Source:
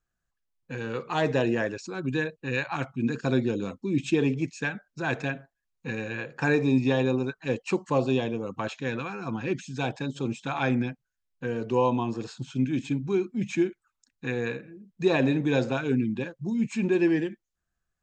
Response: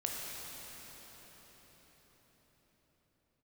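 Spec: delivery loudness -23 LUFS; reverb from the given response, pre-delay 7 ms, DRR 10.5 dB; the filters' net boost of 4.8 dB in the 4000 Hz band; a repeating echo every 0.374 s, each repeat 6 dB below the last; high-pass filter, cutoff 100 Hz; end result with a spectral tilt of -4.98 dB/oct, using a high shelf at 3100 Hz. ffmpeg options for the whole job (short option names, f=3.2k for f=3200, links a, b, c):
-filter_complex "[0:a]highpass=100,highshelf=f=3.1k:g=-5,equalizer=f=4k:t=o:g=9,aecho=1:1:374|748|1122|1496|1870|2244:0.501|0.251|0.125|0.0626|0.0313|0.0157,asplit=2[a][b];[1:a]atrim=start_sample=2205,adelay=7[c];[b][c]afir=irnorm=-1:irlink=0,volume=-14dB[d];[a][d]amix=inputs=2:normalize=0,volume=4dB"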